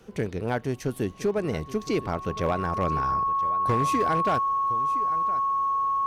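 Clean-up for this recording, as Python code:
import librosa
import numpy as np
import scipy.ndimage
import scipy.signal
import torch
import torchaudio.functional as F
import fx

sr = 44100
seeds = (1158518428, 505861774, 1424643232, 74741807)

y = fx.fix_declip(x, sr, threshold_db=-17.5)
y = fx.notch(y, sr, hz=1100.0, q=30.0)
y = fx.fix_echo_inverse(y, sr, delay_ms=1015, level_db=-16.5)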